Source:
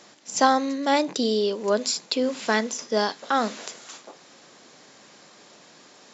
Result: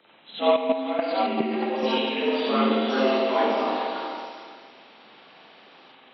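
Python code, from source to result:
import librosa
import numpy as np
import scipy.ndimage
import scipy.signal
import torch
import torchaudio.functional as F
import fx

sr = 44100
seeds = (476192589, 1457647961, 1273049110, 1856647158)

p1 = fx.partial_stretch(x, sr, pct=82)
p2 = fx.rev_spring(p1, sr, rt60_s=1.9, pass_ms=(45, 54), chirp_ms=80, drr_db=-9.0)
p3 = fx.level_steps(p2, sr, step_db=10, at=(0.52, 1.83))
p4 = fx.echo_pitch(p3, sr, ms=791, semitones=3, count=2, db_per_echo=-6.0)
p5 = p4 + fx.echo_multitap(p4, sr, ms=(167, 426), db=(-16.5, -13.0), dry=0)
y = p5 * librosa.db_to_amplitude(-8.0)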